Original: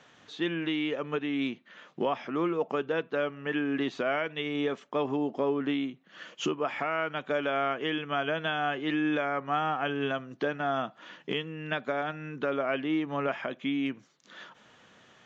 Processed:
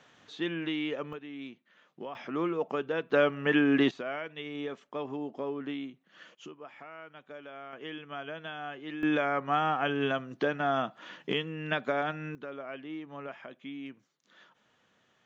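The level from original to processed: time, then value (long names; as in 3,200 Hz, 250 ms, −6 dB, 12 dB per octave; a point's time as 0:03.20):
−2.5 dB
from 0:01.13 −12 dB
from 0:02.15 −2 dB
from 0:03.10 +5.5 dB
from 0:03.91 −7 dB
from 0:06.35 −16.5 dB
from 0:07.73 −10 dB
from 0:09.03 +1 dB
from 0:12.35 −11.5 dB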